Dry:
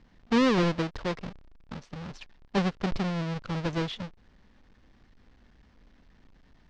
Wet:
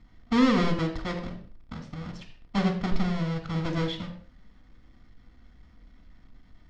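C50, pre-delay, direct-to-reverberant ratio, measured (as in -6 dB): 8.5 dB, 4 ms, 3.5 dB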